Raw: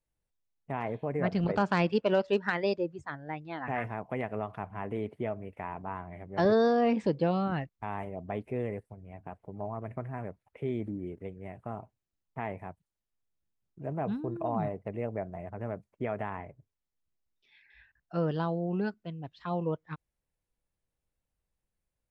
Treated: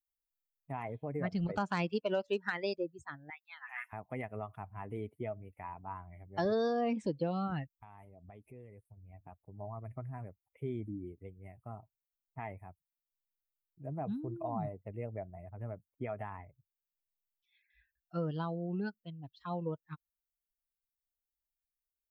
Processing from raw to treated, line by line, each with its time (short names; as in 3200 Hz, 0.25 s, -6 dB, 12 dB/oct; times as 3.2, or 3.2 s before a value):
3.3–3.93 HPF 1100 Hz 24 dB/oct
7.79–9.05 compressor 2.5:1, threshold -42 dBFS
whole clip: per-bin expansion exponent 1.5; high shelf 5100 Hz +8 dB; compressor 2:1, threshold -33 dBFS